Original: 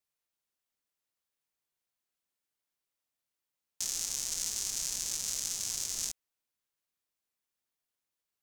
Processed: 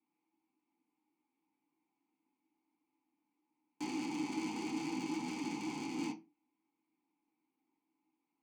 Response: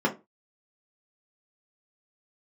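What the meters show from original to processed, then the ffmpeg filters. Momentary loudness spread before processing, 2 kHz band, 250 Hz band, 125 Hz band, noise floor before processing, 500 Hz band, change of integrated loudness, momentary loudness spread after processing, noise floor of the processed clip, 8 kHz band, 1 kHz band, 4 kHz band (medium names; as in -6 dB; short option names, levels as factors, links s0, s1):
4 LU, +2.5 dB, +22.5 dB, +5.0 dB, under -85 dBFS, +11.0 dB, -7.0 dB, 4 LU, under -85 dBFS, -21.5 dB, +12.0 dB, -12.0 dB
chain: -filter_complex "[0:a]asplit=3[s0][s1][s2];[s0]bandpass=f=300:t=q:w=8,volume=1[s3];[s1]bandpass=f=870:t=q:w=8,volume=0.501[s4];[s2]bandpass=f=2240:t=q:w=8,volume=0.355[s5];[s3][s4][s5]amix=inputs=3:normalize=0,aeval=exprs='0.00668*(cos(1*acos(clip(val(0)/0.00668,-1,1)))-cos(1*PI/2))+0.000841*(cos(3*acos(clip(val(0)/0.00668,-1,1)))-cos(3*PI/2))':c=same[s6];[1:a]atrim=start_sample=2205,asetrate=38367,aresample=44100[s7];[s6][s7]afir=irnorm=-1:irlink=0,volume=4.22"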